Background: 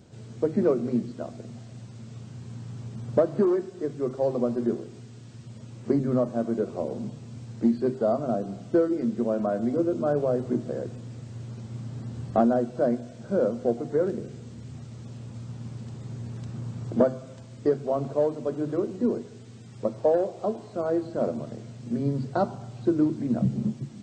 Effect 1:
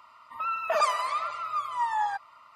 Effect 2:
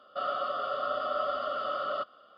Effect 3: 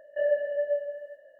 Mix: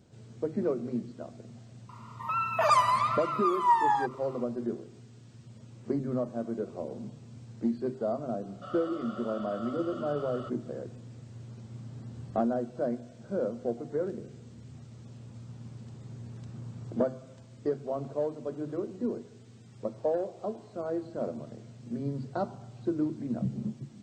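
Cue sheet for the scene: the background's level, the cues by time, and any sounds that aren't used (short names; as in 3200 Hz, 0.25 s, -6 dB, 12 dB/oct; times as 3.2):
background -7 dB
1.89 add 1 -0.5 dB + bell 990 Hz +7.5 dB 0.27 oct
8.46 add 2 -11 dB
not used: 3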